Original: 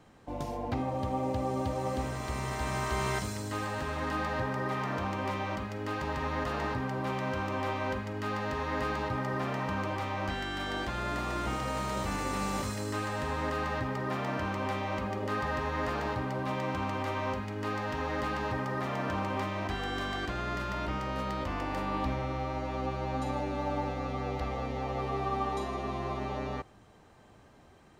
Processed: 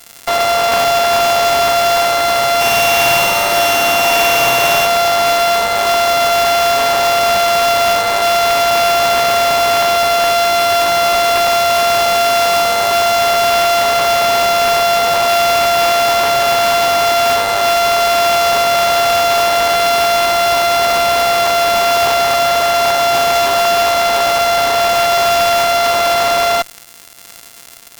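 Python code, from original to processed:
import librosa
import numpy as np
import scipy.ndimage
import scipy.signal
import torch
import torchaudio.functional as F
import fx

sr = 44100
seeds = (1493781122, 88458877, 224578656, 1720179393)

y = np.r_[np.sort(x[:len(x) // 64 * 64].reshape(-1, 64), axis=1).ravel(), x[len(x) // 64 * 64:]]
y = scipy.signal.sosfilt(scipy.signal.butter(4, 680.0, 'highpass', fs=sr, output='sos'), y)
y = fx.high_shelf(y, sr, hz=5000.0, db=2.5)
y = fx.fuzz(y, sr, gain_db=45.0, gate_db=-52.0)
y = fx.room_flutter(y, sr, wall_m=9.4, rt60_s=1.3, at=(2.6, 4.85), fade=0.02)
y = y * 10.0 ** (3.0 / 20.0)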